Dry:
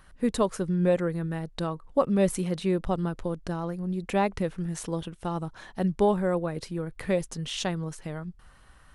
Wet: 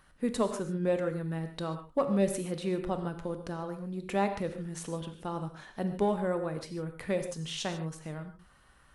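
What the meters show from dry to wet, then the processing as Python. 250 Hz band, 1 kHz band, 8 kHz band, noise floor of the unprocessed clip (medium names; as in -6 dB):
-5.0 dB, -4.0 dB, -3.5 dB, -55 dBFS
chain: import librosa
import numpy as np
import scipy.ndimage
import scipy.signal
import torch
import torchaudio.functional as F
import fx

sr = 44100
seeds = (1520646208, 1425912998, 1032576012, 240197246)

p1 = fx.low_shelf(x, sr, hz=70.0, db=-8.0)
p2 = np.clip(10.0 ** (16.5 / 20.0) * p1, -1.0, 1.0) / 10.0 ** (16.5 / 20.0)
p3 = p1 + (p2 * 10.0 ** (-6.0 / 20.0))
p4 = fx.rev_gated(p3, sr, seeds[0], gate_ms=170, shape='flat', drr_db=7.0)
y = p4 * 10.0 ** (-8.0 / 20.0)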